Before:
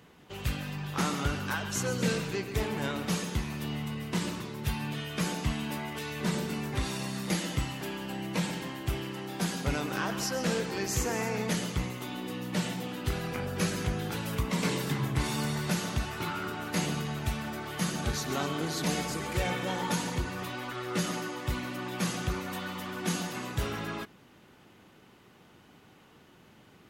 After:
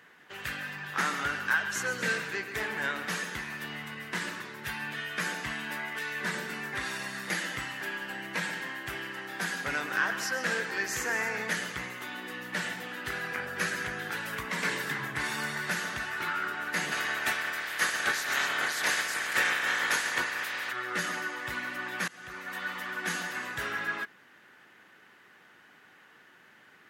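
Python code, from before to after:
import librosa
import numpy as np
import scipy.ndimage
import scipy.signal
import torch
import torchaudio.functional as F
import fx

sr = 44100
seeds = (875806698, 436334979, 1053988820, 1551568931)

y = fx.spec_clip(x, sr, under_db=19, at=(16.91, 20.71), fade=0.02)
y = fx.edit(y, sr, fx.fade_in_from(start_s=22.08, length_s=0.63, floor_db=-23.5), tone=tone)
y = fx.highpass(y, sr, hz=440.0, slope=6)
y = fx.peak_eq(y, sr, hz=1700.0, db=14.5, octaves=0.7)
y = y * librosa.db_to_amplitude(-2.5)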